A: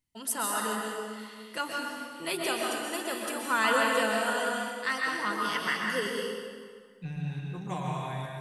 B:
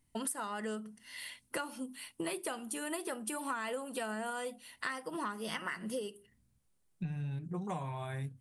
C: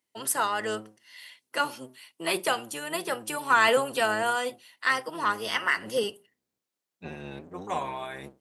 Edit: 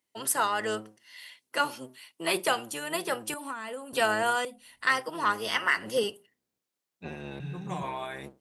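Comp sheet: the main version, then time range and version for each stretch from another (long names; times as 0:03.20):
C
0:03.34–0:03.93: punch in from B
0:04.45–0:04.87: punch in from B
0:07.40–0:07.83: punch in from A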